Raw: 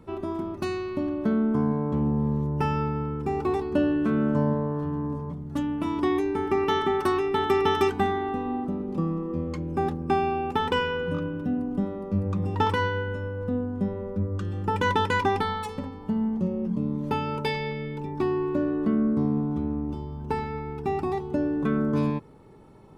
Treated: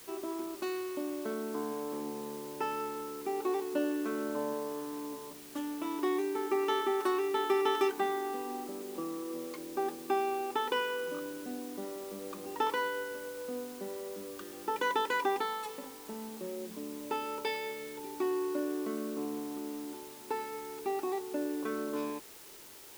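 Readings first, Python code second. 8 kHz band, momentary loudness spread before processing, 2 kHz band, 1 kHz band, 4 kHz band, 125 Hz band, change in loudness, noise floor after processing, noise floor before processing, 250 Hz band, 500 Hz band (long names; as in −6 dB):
can't be measured, 7 LU, −6.0 dB, −6.5 dB, −5.0 dB, −29.5 dB, −8.5 dB, −49 dBFS, −38 dBFS, −11.5 dB, −6.0 dB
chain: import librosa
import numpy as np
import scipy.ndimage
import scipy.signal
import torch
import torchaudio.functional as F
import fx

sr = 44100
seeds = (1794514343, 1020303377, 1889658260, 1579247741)

p1 = scipy.signal.sosfilt(scipy.signal.cheby1(3, 1.0, 330.0, 'highpass', fs=sr, output='sos'), x)
p2 = fx.quant_dither(p1, sr, seeds[0], bits=6, dither='triangular')
p3 = p1 + (p2 * 10.0 ** (-7.0 / 20.0))
y = p3 * 10.0 ** (-9.0 / 20.0)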